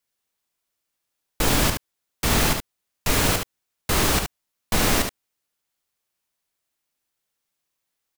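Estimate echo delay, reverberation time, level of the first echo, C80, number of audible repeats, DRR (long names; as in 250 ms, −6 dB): 72 ms, no reverb audible, −6.0 dB, no reverb audible, 1, no reverb audible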